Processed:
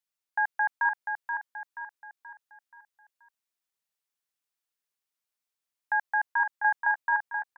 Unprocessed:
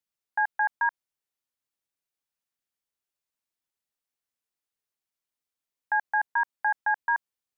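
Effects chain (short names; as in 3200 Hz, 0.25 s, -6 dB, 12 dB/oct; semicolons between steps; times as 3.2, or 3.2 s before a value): low shelf 500 Hz -7.5 dB; feedback echo 0.479 s, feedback 44%, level -6 dB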